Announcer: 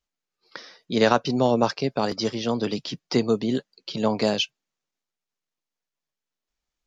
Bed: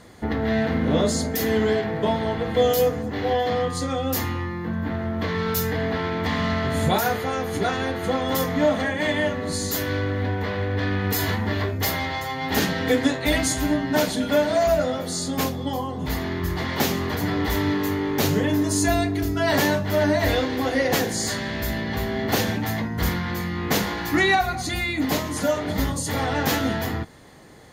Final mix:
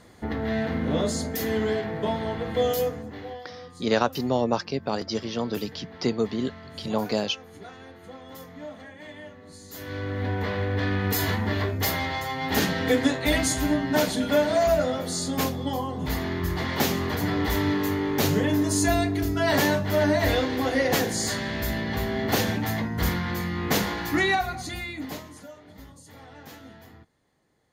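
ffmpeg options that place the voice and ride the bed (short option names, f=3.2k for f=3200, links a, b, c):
-filter_complex "[0:a]adelay=2900,volume=-3.5dB[a];[1:a]volume=13.5dB,afade=t=out:st=2.7:d=0.72:silence=0.177828,afade=t=in:st=9.68:d=0.71:silence=0.125893,afade=t=out:st=23.86:d=1.62:silence=0.0891251[b];[a][b]amix=inputs=2:normalize=0"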